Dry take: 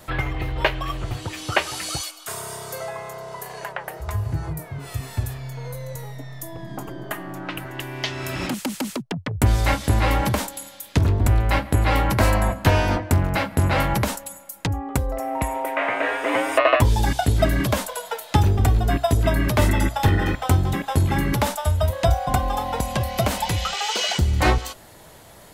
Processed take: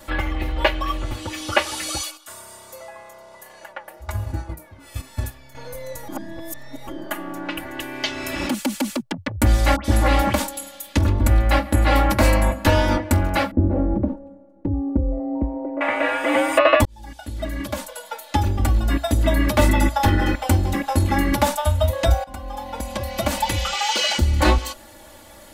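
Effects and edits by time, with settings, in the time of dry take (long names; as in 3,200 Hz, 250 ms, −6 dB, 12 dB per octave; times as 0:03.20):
0:02.17–0:05.55: noise gate −29 dBFS, range −9 dB
0:06.08–0:06.87: reverse
0:09.76–0:10.33: all-pass dispersion highs, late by 85 ms, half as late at 2,000 Hz
0:13.51–0:15.81: low-pass with resonance 360 Hz, resonance Q 1.6
0:16.85–0:20.23: fade in equal-power
0:22.24–0:23.57: fade in, from −19 dB
whole clip: comb filter 3.5 ms, depth 99%; level −1 dB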